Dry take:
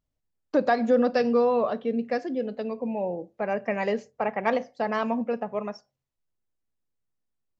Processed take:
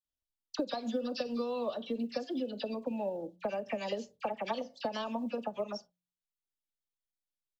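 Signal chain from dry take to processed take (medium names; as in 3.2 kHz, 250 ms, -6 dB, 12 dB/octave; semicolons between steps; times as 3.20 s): gate -48 dBFS, range -14 dB; resonant high shelf 2.6 kHz +8 dB, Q 3; comb 3.4 ms, depth 32%; de-hum 59.46 Hz, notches 3; transient shaper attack +6 dB, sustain -2 dB; compression 8:1, threshold -27 dBFS, peak gain reduction 16 dB; phase dispersion lows, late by 53 ms, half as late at 1.6 kHz; short-mantissa float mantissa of 6-bit; trim -4 dB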